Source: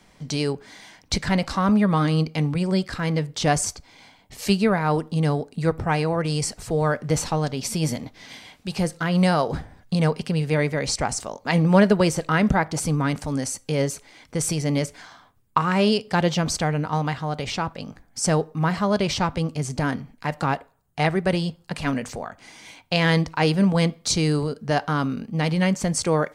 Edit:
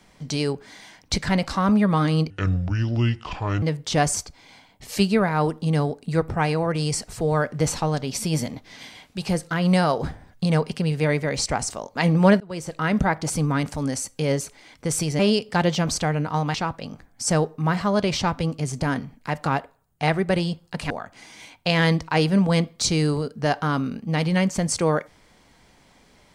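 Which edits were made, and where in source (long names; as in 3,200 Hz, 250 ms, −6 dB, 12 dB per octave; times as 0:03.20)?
0:02.30–0:03.12: play speed 62%
0:11.90–0:12.82: fade in equal-power
0:14.69–0:15.78: remove
0:17.13–0:17.51: remove
0:21.87–0:22.16: remove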